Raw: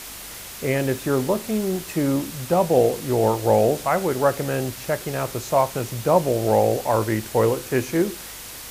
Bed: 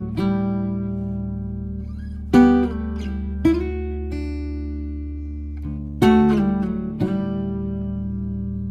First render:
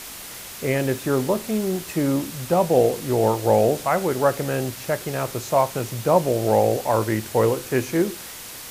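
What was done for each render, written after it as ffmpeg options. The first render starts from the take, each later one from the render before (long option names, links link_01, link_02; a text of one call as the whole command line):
ffmpeg -i in.wav -af "bandreject=frequency=50:width_type=h:width=4,bandreject=frequency=100:width_type=h:width=4" out.wav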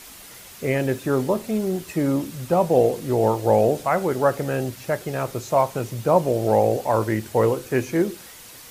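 ffmpeg -i in.wav -af "afftdn=noise_reduction=7:noise_floor=-37" out.wav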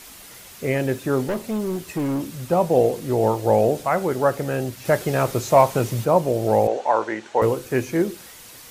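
ffmpeg -i in.wav -filter_complex "[0:a]asettb=1/sr,asplit=3[link_01][link_02][link_03];[link_01]atrim=end=1.244[link_04];[link_02]atrim=start=1.24:end=2.4,asetpts=PTS-STARTPTS,afade=type=in:duration=0.004:curve=qsin,afade=type=out:start_time=1.156:duration=0.004:curve=qsin,asoftclip=type=hard:threshold=-20.5dB[link_05];[link_03]atrim=start=2.396[link_06];[link_04][link_05]acrossfade=duration=0.004:curve1=hsin:curve2=qsin[link_07];[link_07][link_06]acrossfade=duration=0.004:curve1=qsin:curve2=hsin,asettb=1/sr,asplit=3[link_08][link_09][link_10];[link_08]atrim=end=4.854[link_11];[link_09]atrim=start=4.85:end=6.05,asetpts=PTS-STARTPTS,afade=type=in:duration=0.004:curve=qsin,afade=type=out:start_time=1.196:duration=0.004:curve=qsin,acontrast=40[link_12];[link_10]atrim=start=6.046[link_13];[link_11][link_12]acrossfade=duration=0.004:curve1=hsin:curve2=qsin[link_14];[link_14][link_13]acrossfade=duration=0.004:curve1=qsin:curve2=hsin,asettb=1/sr,asplit=3[link_15][link_16][link_17];[link_15]atrim=end=6.674[link_18];[link_16]atrim=start=6.67:end=7.42,asetpts=PTS-STARTPTS,afade=type=in:duration=0.004:curve=qsin,afade=type=out:start_time=0.746:duration=0.004:curve=qsin,highpass=380,equalizer=frequency=860:width_type=q:width=4:gain=6,equalizer=frequency=1500:width_type=q:width=4:gain=4,equalizer=frequency=4900:width_type=q:width=4:gain=-7,lowpass=frequency=6400:width=0.5412,lowpass=frequency=6400:width=1.3066[link_19];[link_17]atrim=start=7.416[link_20];[link_18][link_19]acrossfade=duration=0.004:curve1=hsin:curve2=qsin[link_21];[link_21][link_20]acrossfade=duration=0.004:curve1=qsin:curve2=hsin" out.wav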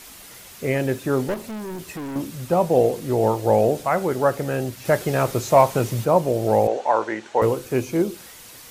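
ffmpeg -i in.wav -filter_complex "[0:a]asettb=1/sr,asplit=3[link_01][link_02][link_03];[link_01]atrim=end=1.344[link_04];[link_02]atrim=start=1.34:end=2.16,asetpts=PTS-STARTPTS,afade=type=in:duration=0.004:curve=qsin,afade=type=out:start_time=0.816:duration=0.004:curve=qsin,asoftclip=type=hard:threshold=-29.5dB[link_05];[link_03]atrim=start=2.156[link_06];[link_04][link_05]acrossfade=duration=0.004:curve1=hsin:curve2=qsin[link_07];[link_07][link_06]acrossfade=duration=0.004:curve1=qsin:curve2=hsin,asettb=1/sr,asplit=3[link_08][link_09][link_10];[link_08]atrim=end=7.724[link_11];[link_09]atrim=start=7.72:end=8.13,asetpts=PTS-STARTPTS,afade=type=in:duration=0.004:curve=qsin,afade=type=out:start_time=0.406:duration=0.004:curve=qsin,equalizer=frequency=1800:width_type=o:width=0.26:gain=-12.5[link_12];[link_10]atrim=start=8.126[link_13];[link_11][link_12]acrossfade=duration=0.004:curve1=hsin:curve2=qsin[link_14];[link_14][link_13]acrossfade=duration=0.004:curve1=qsin:curve2=hsin" out.wav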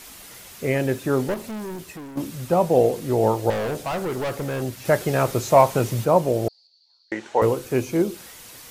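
ffmpeg -i in.wav -filter_complex "[0:a]asettb=1/sr,asplit=3[link_01][link_02][link_03];[link_01]atrim=end=3.504[link_04];[link_02]atrim=start=3.5:end=4.62,asetpts=PTS-STARTPTS,afade=type=in:duration=0.004:curve=qsin,afade=type=out:start_time=1.116:duration=0.004:curve=qsin,volume=23.5dB,asoftclip=hard,volume=-23.5dB[link_05];[link_03]atrim=start=4.616[link_06];[link_04][link_05]acrossfade=duration=0.004:curve1=hsin:curve2=qsin[link_07];[link_07][link_06]acrossfade=duration=0.004:curve1=qsin:curve2=hsin,asettb=1/sr,asplit=3[link_08][link_09][link_10];[link_08]atrim=end=6.484[link_11];[link_09]atrim=start=6.48:end=7.12,asetpts=PTS-STARTPTS,afade=type=in:duration=0.004:curve=qsin,afade=type=out:start_time=0.636:duration=0.004:curve=qsin,asuperpass=centerf=4500:order=4:qfactor=7.8[link_12];[link_10]atrim=start=7.116[link_13];[link_11][link_12]acrossfade=duration=0.004:curve1=hsin:curve2=qsin[link_14];[link_14][link_13]acrossfade=duration=0.004:curve1=qsin:curve2=hsin,asplit=2[link_15][link_16];[link_15]atrim=end=2.17,asetpts=PTS-STARTPTS,afade=type=out:start_time=1.65:duration=0.52:silence=0.316228[link_17];[link_16]atrim=start=2.17,asetpts=PTS-STARTPTS,afade=type=in:duration=0.004:curve=hsin:silence=0.316228[link_18];[link_17][link_18]concat=n=2:v=0:a=1" out.wav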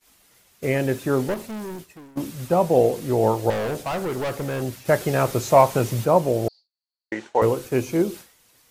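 ffmpeg -i in.wav -af "agate=range=-33dB:threshold=-32dB:ratio=3:detection=peak" out.wav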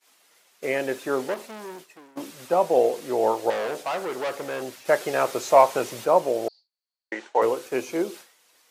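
ffmpeg -i in.wav -af "highpass=420,highshelf=frequency=11000:gain=-9.5" out.wav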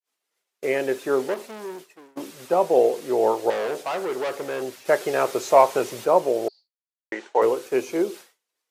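ffmpeg -i in.wav -af "agate=range=-33dB:threshold=-47dB:ratio=3:detection=peak,equalizer=frequency=400:width_type=o:width=0.39:gain=5.5" out.wav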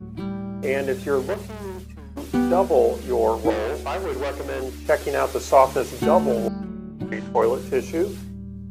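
ffmpeg -i in.wav -i bed.wav -filter_complex "[1:a]volume=-9dB[link_01];[0:a][link_01]amix=inputs=2:normalize=0" out.wav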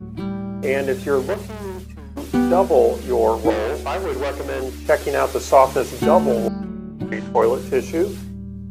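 ffmpeg -i in.wav -af "volume=3dB,alimiter=limit=-1dB:level=0:latency=1" out.wav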